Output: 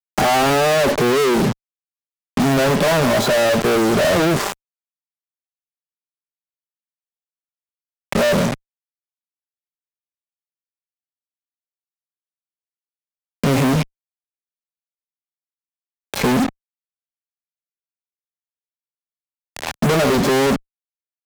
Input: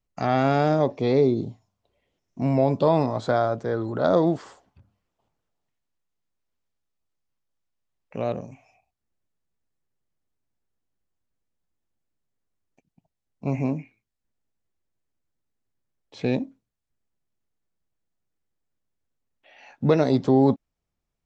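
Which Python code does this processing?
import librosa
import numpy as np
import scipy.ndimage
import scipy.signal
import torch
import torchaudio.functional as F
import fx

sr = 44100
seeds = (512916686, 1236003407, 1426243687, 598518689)

y = fx.peak_eq(x, sr, hz=3100.0, db=-6.0, octaves=0.9)
y = y + 0.45 * np.pad(y, (int(5.0 * sr / 1000.0), 0))[:len(y)]
y = fx.hpss(y, sr, part='percussive', gain_db=-5)
y = fx.low_shelf(y, sr, hz=120.0, db=-9.5)
y = fx.leveller(y, sr, passes=2)
y = fx.fuzz(y, sr, gain_db=49.0, gate_db=-45.0)
y = fx.band_squash(y, sr, depth_pct=40)
y = y * 10.0 ** (-1.5 / 20.0)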